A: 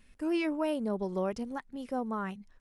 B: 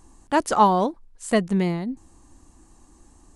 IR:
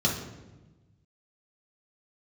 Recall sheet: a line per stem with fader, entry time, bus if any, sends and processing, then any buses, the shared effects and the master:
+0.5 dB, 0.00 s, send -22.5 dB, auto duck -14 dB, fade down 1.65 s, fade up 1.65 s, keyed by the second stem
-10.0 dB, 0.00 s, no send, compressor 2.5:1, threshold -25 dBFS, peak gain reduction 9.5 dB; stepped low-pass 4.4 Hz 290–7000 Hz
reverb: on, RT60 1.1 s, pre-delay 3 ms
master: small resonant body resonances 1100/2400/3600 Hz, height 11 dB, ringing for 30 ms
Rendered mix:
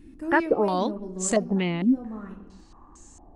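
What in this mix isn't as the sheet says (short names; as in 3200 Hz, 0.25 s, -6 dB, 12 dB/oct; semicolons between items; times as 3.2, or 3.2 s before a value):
stem B -10.0 dB -> +1.0 dB; master: missing small resonant body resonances 1100/2400/3600 Hz, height 11 dB, ringing for 30 ms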